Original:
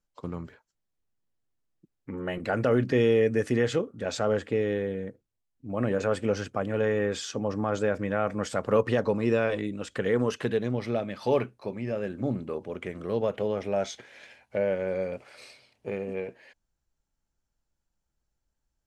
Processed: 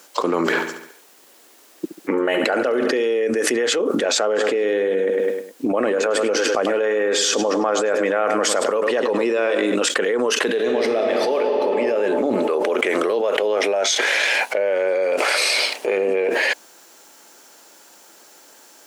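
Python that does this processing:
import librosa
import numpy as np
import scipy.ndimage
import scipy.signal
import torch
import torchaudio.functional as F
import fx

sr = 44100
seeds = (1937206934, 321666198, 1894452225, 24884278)

y = fx.echo_feedback(x, sr, ms=70, feedback_pct=54, wet_db=-12.0, at=(0.39, 3.06))
y = fx.echo_feedback(y, sr, ms=103, feedback_pct=36, wet_db=-12.5, at=(4.35, 9.74), fade=0.02)
y = fx.reverb_throw(y, sr, start_s=10.47, length_s=0.89, rt60_s=2.9, drr_db=1.5)
y = fx.low_shelf(y, sr, hz=250.0, db=-10.0, at=(12.42, 15.97))
y = scipy.signal.sosfilt(scipy.signal.butter(4, 320.0, 'highpass', fs=sr, output='sos'), y)
y = fx.high_shelf(y, sr, hz=6400.0, db=3.5)
y = fx.env_flatten(y, sr, amount_pct=100)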